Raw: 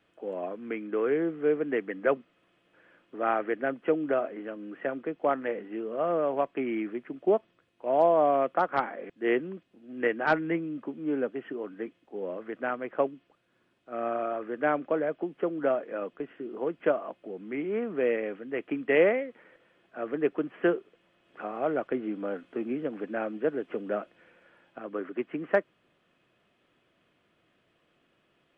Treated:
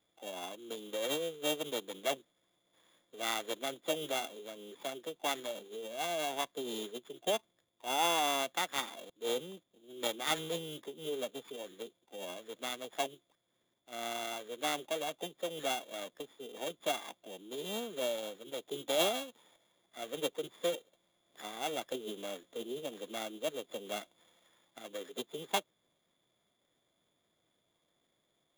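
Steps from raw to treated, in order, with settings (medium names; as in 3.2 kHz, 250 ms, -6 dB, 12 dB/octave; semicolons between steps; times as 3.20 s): sorted samples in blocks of 16 samples; formant shift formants +4 st; trim -8.5 dB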